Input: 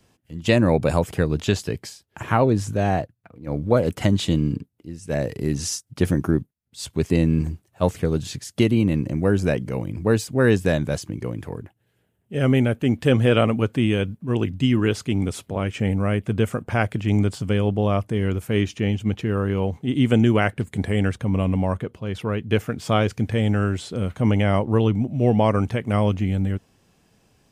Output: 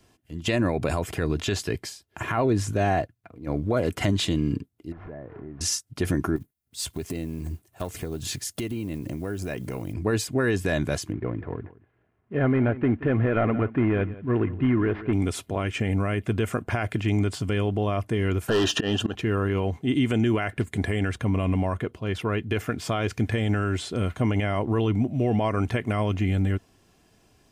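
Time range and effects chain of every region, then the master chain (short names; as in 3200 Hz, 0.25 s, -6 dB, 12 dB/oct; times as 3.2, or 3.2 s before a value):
4.92–5.61 delta modulation 32 kbps, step -32 dBFS + LPF 1700 Hz 24 dB/oct + compressor 4:1, threshold -38 dBFS
6.36–9.94 block floating point 7-bit + high shelf 9900 Hz +10.5 dB + compressor 10:1, threshold -26 dBFS
11.12–15.13 CVSD 32 kbps + LPF 2100 Hz 24 dB/oct + echo 0.175 s -18.5 dB
18.48–19.15 auto swell 0.311 s + overdrive pedal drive 26 dB, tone 3400 Hz, clips at -6.5 dBFS + Butterworth band-stop 2200 Hz, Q 2.4
whole clip: dynamic EQ 1800 Hz, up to +4 dB, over -41 dBFS, Q 0.94; comb 2.9 ms, depth 34%; limiter -14.5 dBFS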